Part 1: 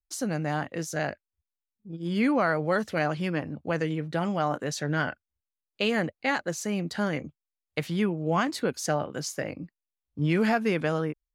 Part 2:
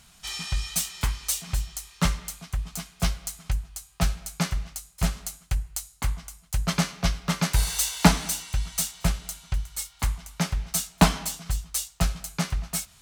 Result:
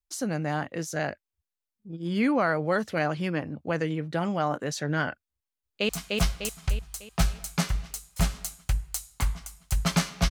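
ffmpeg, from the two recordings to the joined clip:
ffmpeg -i cue0.wav -i cue1.wav -filter_complex "[0:a]apad=whole_dur=10.3,atrim=end=10.3,atrim=end=5.892[link_01];[1:a]atrim=start=2.708:end=7.12[link_02];[link_01][link_02]acrossfade=duration=0.004:curve1=hsin:curve2=hsin,asplit=2[link_03][link_04];[link_04]afade=type=in:start_time=5.33:duration=0.01,afade=type=out:start_time=5.89:duration=0.01,aecho=0:1:300|600|900|1200|1500|1800|2100:0.749894|0.374947|0.187474|0.0937368|0.0468684|0.0234342|0.0117171[link_05];[link_03][link_05]amix=inputs=2:normalize=0" out.wav

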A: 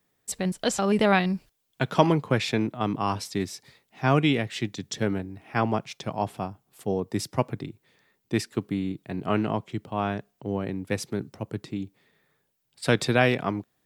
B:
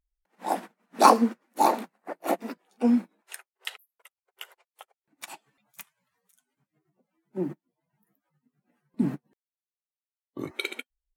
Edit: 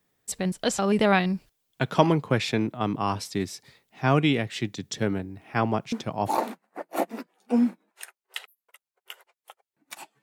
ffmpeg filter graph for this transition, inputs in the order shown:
ffmpeg -i cue0.wav -i cue1.wav -filter_complex "[1:a]asplit=2[link_01][link_02];[0:a]apad=whole_dur=10.22,atrim=end=10.22,atrim=end=6.382[link_03];[link_02]atrim=start=1.688:end=5.53[link_04];[link_01]atrim=start=1.23:end=1.69,asetpts=PTS-STARTPTS,volume=-6dB,afade=type=in:duration=0.004:curve=hsin,afade=type=out:start_time=0.456:duration=0.004:curve=hsin,adelay=5920[link_05];[link_03][link_04]acrossfade=duration=0.004:curve1=hsin:curve2=hsin[link_06];[link_06][link_05]amix=inputs=2:normalize=0" out.wav

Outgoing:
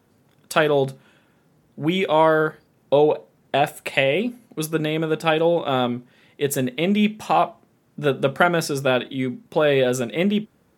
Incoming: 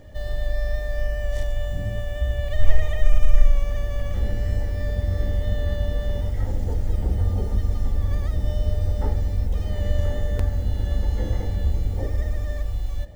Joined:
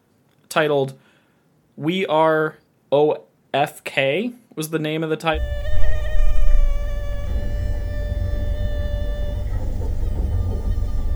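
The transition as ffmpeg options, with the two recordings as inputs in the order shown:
ffmpeg -i cue0.wav -i cue1.wav -filter_complex "[0:a]apad=whole_dur=11.15,atrim=end=11.15,atrim=end=5.4,asetpts=PTS-STARTPTS[link_01];[1:a]atrim=start=2.17:end=8.02,asetpts=PTS-STARTPTS[link_02];[link_01][link_02]acrossfade=duration=0.1:curve1=tri:curve2=tri" out.wav

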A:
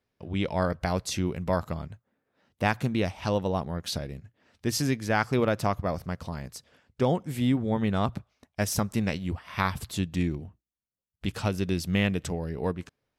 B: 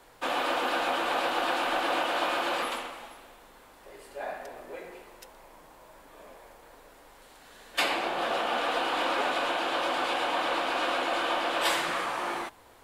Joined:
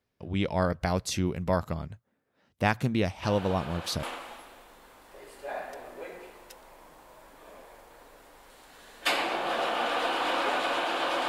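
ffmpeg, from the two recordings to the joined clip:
ffmpeg -i cue0.wav -i cue1.wav -filter_complex "[1:a]asplit=2[link_01][link_02];[0:a]apad=whole_dur=11.28,atrim=end=11.28,atrim=end=4.032[link_03];[link_02]atrim=start=2.748:end=10[link_04];[link_01]atrim=start=1.95:end=2.75,asetpts=PTS-STARTPTS,volume=-12.5dB,afade=type=in:duration=0.004:curve=hsin,afade=type=out:start_time=0.796:duration=0.004:curve=hsin,adelay=3230[link_05];[link_03][link_04]acrossfade=duration=0.004:curve1=hsin:curve2=hsin[link_06];[link_06][link_05]amix=inputs=2:normalize=0" out.wav

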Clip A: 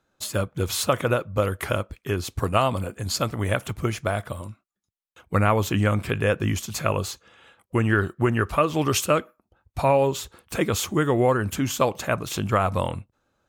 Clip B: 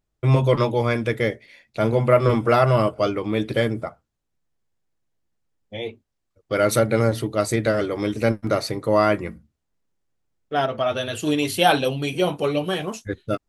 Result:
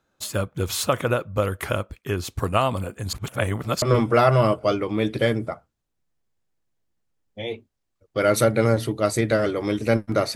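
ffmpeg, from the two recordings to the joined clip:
ffmpeg -i cue0.wav -i cue1.wav -filter_complex "[0:a]apad=whole_dur=10.35,atrim=end=10.35,asplit=2[link_01][link_02];[link_01]atrim=end=3.132[link_03];[link_02]atrim=start=3.128:end=3.822,asetpts=PTS-STARTPTS,areverse[link_04];[1:a]atrim=start=2.168:end=8.7[link_05];[link_03][link_04]acrossfade=duration=0.004:curve1=hsin:curve2=hsin[link_06];[link_06][link_05]acrossfade=duration=0.004:curve1=hsin:curve2=hsin" out.wav

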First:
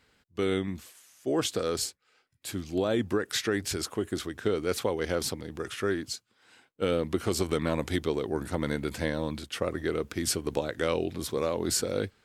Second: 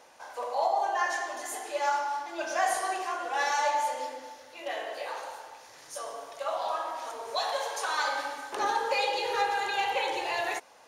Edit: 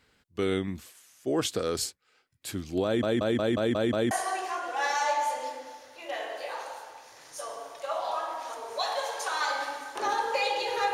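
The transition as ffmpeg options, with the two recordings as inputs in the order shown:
ffmpeg -i cue0.wav -i cue1.wav -filter_complex "[0:a]apad=whole_dur=10.93,atrim=end=10.93,asplit=7[link_01][link_02][link_03][link_04][link_05][link_06][link_07];[link_01]atrim=end=3.032[link_08];[link_02]atrim=start=2.848:end=3.032[link_09];[link_03]atrim=start=2.848:end=3.032[link_10];[link_04]atrim=start=2.848:end=3.032[link_11];[link_05]atrim=start=2.848:end=3.032[link_12];[link_06]atrim=start=2.848:end=3.032[link_13];[link_07]atrim=start=2.848:end=3.032[link_14];[1:a]atrim=start=2.678:end=9.5[link_15];[link_08][link_09]acrossfade=duration=0.004:curve1=hsin:curve2=hsin[link_16];[link_16][link_10]acrossfade=duration=0.004:curve1=hsin:curve2=hsin[link_17];[link_17][link_11]acrossfade=duration=0.004:curve1=hsin:curve2=hsin[link_18];[link_18][link_12]acrossfade=duration=0.004:curve1=hsin:curve2=hsin[link_19];[link_19][link_13]acrossfade=duration=0.004:curve1=hsin:curve2=hsin[link_20];[link_20][link_14]acrossfade=duration=0.004:curve1=hsin:curve2=hsin[link_21];[link_21][link_15]acrossfade=duration=0.004:curve1=hsin:curve2=hsin" out.wav

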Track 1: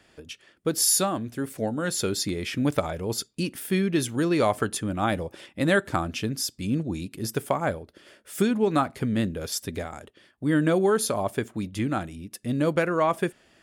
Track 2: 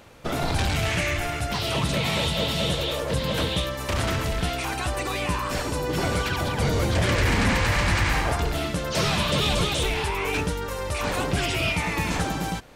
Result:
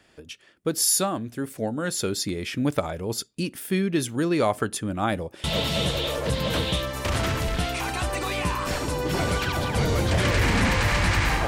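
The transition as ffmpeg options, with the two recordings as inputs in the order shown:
ffmpeg -i cue0.wav -i cue1.wav -filter_complex "[0:a]apad=whole_dur=11.47,atrim=end=11.47,atrim=end=5.442[link_01];[1:a]atrim=start=2.278:end=8.31[link_02];[link_01][link_02]acrossfade=duration=0.004:curve1=hsin:curve2=hsin" out.wav

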